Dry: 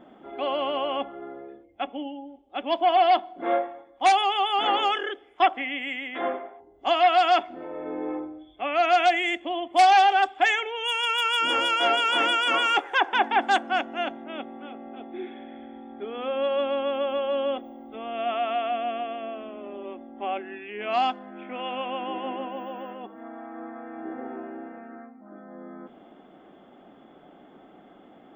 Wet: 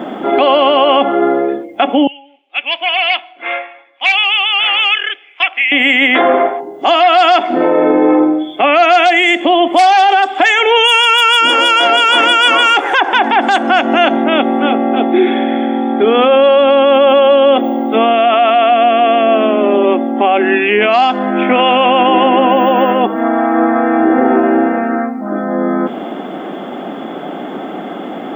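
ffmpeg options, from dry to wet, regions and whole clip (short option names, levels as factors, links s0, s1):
-filter_complex "[0:a]asettb=1/sr,asplit=3[s0][s1][s2];[s0]atrim=end=2.074[s3];[s1]atrim=start=2.07:end=5.72,asetpts=PTS-STARTPTS,afade=t=in:d=0.004:c=qsin,afade=t=out:st=3.646:d=0.004:c=qsin,bandpass=f=2500:t=q:w=5.6,acompressor=threshold=0.00794:ratio=1.5:attack=3.2:release=140:knee=1:detection=peak[s4];[s2]atrim=start=5.716[s5];[s3][s4]acrossfade=d=0.004:c1=hsin:c2=qsin[s6];[s6][s5]acrossfade=d=0.004:c1=qsin:c2=hsin,highpass=f=160:w=0.5412,highpass=f=160:w=1.3066,acompressor=threshold=0.0501:ratio=6,alimiter=level_in=26.6:limit=0.891:release=50:level=0:latency=1,volume=0.891"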